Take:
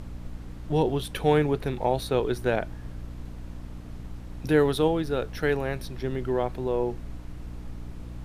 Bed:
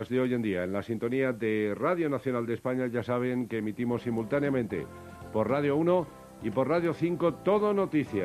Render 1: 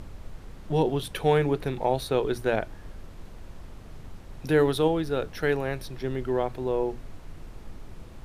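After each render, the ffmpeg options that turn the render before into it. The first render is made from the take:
ffmpeg -i in.wav -af "bandreject=frequency=60:width_type=h:width=6,bandreject=frequency=120:width_type=h:width=6,bandreject=frequency=180:width_type=h:width=6,bandreject=frequency=240:width_type=h:width=6,bandreject=frequency=300:width_type=h:width=6" out.wav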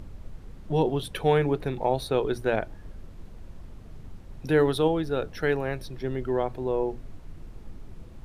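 ffmpeg -i in.wav -af "afftdn=noise_reduction=6:noise_floor=-45" out.wav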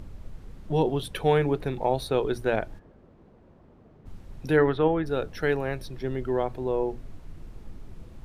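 ffmpeg -i in.wav -filter_complex "[0:a]asplit=3[link_01][link_02][link_03];[link_01]afade=type=out:start_time=2.78:duration=0.02[link_04];[link_02]bandpass=frequency=490:width_type=q:width=0.62,afade=type=in:start_time=2.78:duration=0.02,afade=type=out:start_time=4.05:duration=0.02[link_05];[link_03]afade=type=in:start_time=4.05:duration=0.02[link_06];[link_04][link_05][link_06]amix=inputs=3:normalize=0,asplit=3[link_07][link_08][link_09];[link_07]afade=type=out:start_time=4.56:duration=0.02[link_10];[link_08]lowpass=frequency=1900:width_type=q:width=1.8,afade=type=in:start_time=4.56:duration=0.02,afade=type=out:start_time=5.05:duration=0.02[link_11];[link_09]afade=type=in:start_time=5.05:duration=0.02[link_12];[link_10][link_11][link_12]amix=inputs=3:normalize=0" out.wav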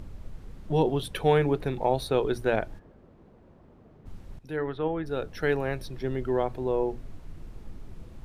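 ffmpeg -i in.wav -filter_complex "[0:a]asplit=2[link_01][link_02];[link_01]atrim=end=4.39,asetpts=PTS-STARTPTS,afade=type=out:start_time=4.386:duration=0.004:curve=hsin:silence=0.16788[link_03];[link_02]atrim=start=4.39,asetpts=PTS-STARTPTS,afade=type=in:duration=1.21:silence=0.16788[link_04];[link_03][link_04]concat=n=2:v=0:a=1" out.wav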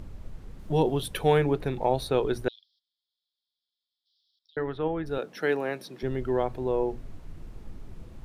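ffmpeg -i in.wav -filter_complex "[0:a]asettb=1/sr,asplit=3[link_01][link_02][link_03];[link_01]atrim=end=0.594[link_04];[link_02]atrim=start=0.59:end=1.41,asetpts=PTS-STARTPTS,afade=type=in:duration=0.004:curve=qsin,afade=type=out:start_time=0.816:duration=0.004:curve=qsin,highshelf=frequency=8500:gain=8[link_05];[link_03]atrim=start=1.406[link_06];[link_04][link_05]acrossfade=duration=0.004:curve1=hsin:curve2=qsin[link_07];[link_07][link_06]acrossfade=duration=0.004:curve1=qsin:curve2=hsin,asettb=1/sr,asplit=3[link_08][link_09][link_10];[link_08]atrim=end=2.484[link_11];[link_09]atrim=start=2.48:end=4.57,asetpts=PTS-STARTPTS,afade=type=in:duration=0.004:curve=qsin,afade=type=out:start_time=2.086:duration=0.004:curve=qsin,asuperpass=centerf=4200:order=12:qfactor=2[link_12];[link_10]atrim=start=4.566[link_13];[link_11][link_12]acrossfade=duration=0.004:curve1=hsin:curve2=qsin[link_14];[link_14][link_13]acrossfade=duration=0.004:curve1=qsin:curve2=hsin,asettb=1/sr,asplit=3[link_15][link_16][link_17];[link_15]atrim=end=5.184[link_18];[link_16]atrim=start=5.18:end=6.03,asetpts=PTS-STARTPTS,afade=type=in:duration=0.004:curve=qsin,afade=type=out:start_time=0.846:duration=0.004:curve=qsin,highpass=frequency=180:width=0.5412,highpass=frequency=180:width=1.3066[link_19];[link_17]atrim=start=6.026[link_20];[link_18][link_19]acrossfade=duration=0.004:curve1=hsin:curve2=qsin[link_21];[link_21][link_20]acrossfade=duration=0.004:curve1=qsin:curve2=hsin" out.wav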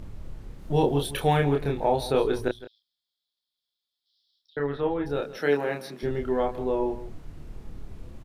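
ffmpeg -i in.wav -filter_complex "[0:a]asplit=2[link_01][link_02];[link_02]adelay=28,volume=-3dB[link_03];[link_01][link_03]amix=inputs=2:normalize=0,aecho=1:1:163:0.168" out.wav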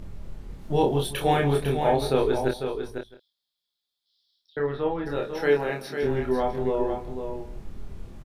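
ffmpeg -i in.wav -filter_complex "[0:a]asplit=2[link_01][link_02];[link_02]adelay=23,volume=-7dB[link_03];[link_01][link_03]amix=inputs=2:normalize=0,aecho=1:1:499:0.422" out.wav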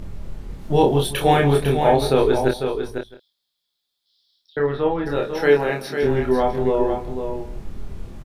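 ffmpeg -i in.wav -af "volume=6dB,alimiter=limit=-3dB:level=0:latency=1" out.wav

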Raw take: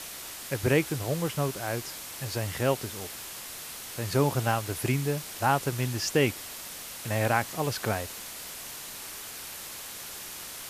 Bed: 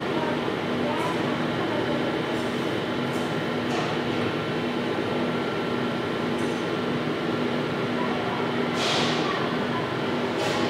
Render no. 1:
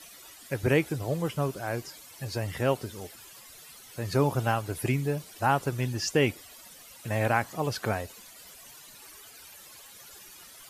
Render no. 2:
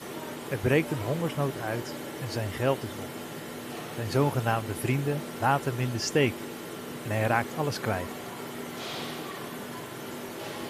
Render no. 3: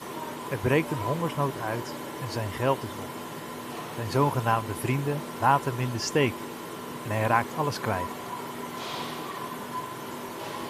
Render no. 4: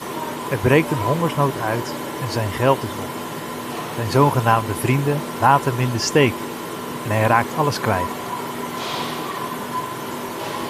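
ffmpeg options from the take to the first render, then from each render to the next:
ffmpeg -i in.wav -af "afftdn=noise_reduction=14:noise_floor=-41" out.wav
ffmpeg -i in.wav -i bed.wav -filter_complex "[1:a]volume=-12.5dB[link_01];[0:a][link_01]amix=inputs=2:normalize=0" out.wav
ffmpeg -i in.wav -af "equalizer=frequency=1000:width_type=o:width=0.21:gain=13" out.wav
ffmpeg -i in.wav -af "volume=8.5dB,alimiter=limit=-2dB:level=0:latency=1" out.wav

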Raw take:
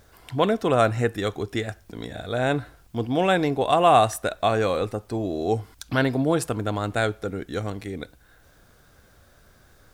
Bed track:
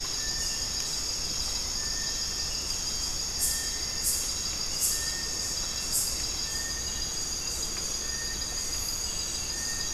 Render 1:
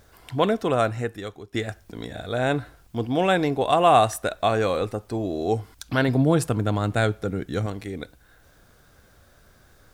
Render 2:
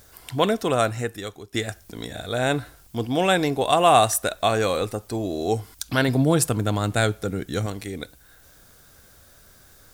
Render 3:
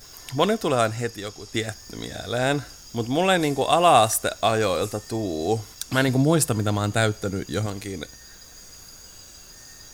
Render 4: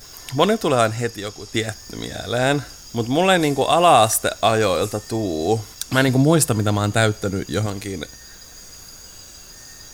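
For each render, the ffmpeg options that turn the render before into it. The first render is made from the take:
ffmpeg -i in.wav -filter_complex "[0:a]asettb=1/sr,asplit=3[link_01][link_02][link_03];[link_01]atrim=end=6.084[link_04];[link_02]atrim=start=6.08:end=7.66,asetpts=PTS-STARTPTS,afade=type=in:duration=0.004:curve=qsin,afade=type=out:start_time=1.576:duration=0.004:curve=qsin,equalizer=frequency=140:width=0.94:gain=7[link_05];[link_03]atrim=start=7.656[link_06];[link_04][link_05]acrossfade=duration=0.004:curve1=hsin:curve2=qsin[link_07];[link_07][link_06]acrossfade=duration=0.004:curve1=qsin:curve2=hsin,asplit=2[link_08][link_09];[link_08]atrim=end=1.54,asetpts=PTS-STARTPTS,afade=type=out:start_time=0.5:duration=1.04:silence=0.16788[link_10];[link_09]atrim=start=1.54,asetpts=PTS-STARTPTS,afade=type=in:duration=0.004:curve=hsin:silence=0.16788[link_11];[link_10][link_11]concat=n=2:v=0:a=1" out.wav
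ffmpeg -i in.wav -af "highshelf=frequency=4300:gain=12" out.wav
ffmpeg -i in.wav -i bed.wav -filter_complex "[1:a]volume=-14dB[link_01];[0:a][link_01]amix=inputs=2:normalize=0" out.wav
ffmpeg -i in.wav -af "volume=4dB,alimiter=limit=-2dB:level=0:latency=1" out.wav

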